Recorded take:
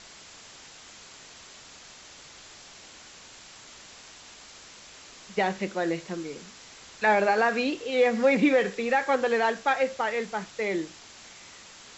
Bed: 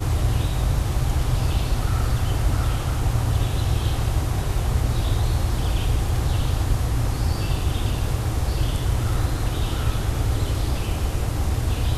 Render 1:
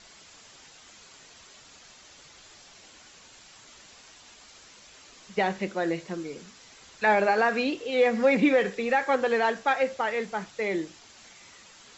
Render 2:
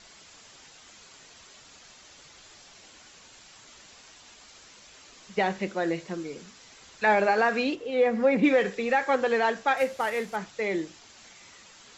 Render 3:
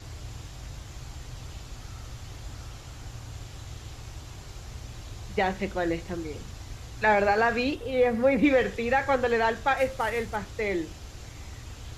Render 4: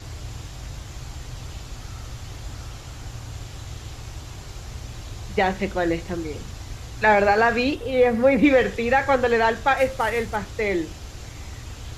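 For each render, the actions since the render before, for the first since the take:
broadband denoise 6 dB, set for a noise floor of −49 dBFS
0:07.75–0:08.44: high-shelf EQ 2,100 Hz −9.5 dB; 0:09.77–0:10.36: variable-slope delta modulation 64 kbit/s
mix in bed −19.5 dB
level +5 dB

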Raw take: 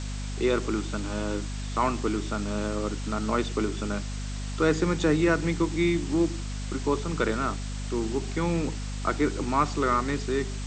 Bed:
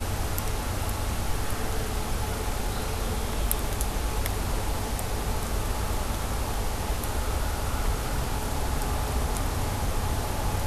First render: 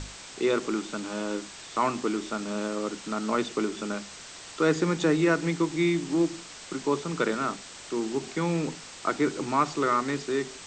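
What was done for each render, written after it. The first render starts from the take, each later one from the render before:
mains-hum notches 50/100/150/200/250 Hz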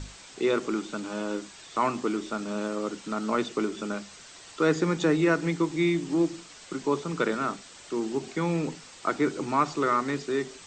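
broadband denoise 6 dB, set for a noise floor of −44 dBFS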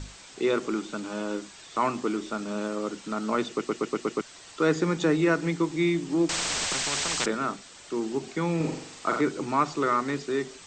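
0:03.49: stutter in place 0.12 s, 6 plays
0:06.29–0:07.26: every bin compressed towards the loudest bin 10 to 1
0:08.56–0:09.21: flutter between parallel walls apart 7.4 metres, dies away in 0.65 s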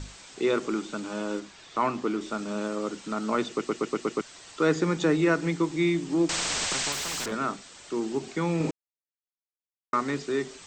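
0:01.40–0:02.21: high-frequency loss of the air 75 metres
0:06.92–0:07.32: hard clipping −29.5 dBFS
0:08.71–0:09.93: silence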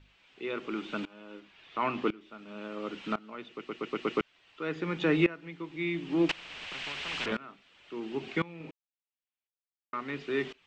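low-pass with resonance 2,800 Hz, resonance Q 2.9
tremolo with a ramp in dB swelling 0.95 Hz, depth 22 dB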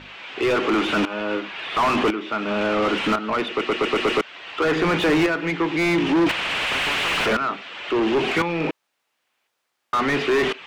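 in parallel at −3.5 dB: soft clipping −27 dBFS, distortion −9 dB
on the sum: mid-hump overdrive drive 33 dB, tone 1,500 Hz, clips at −10.5 dBFS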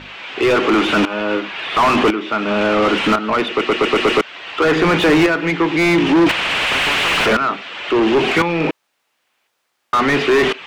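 level +6 dB

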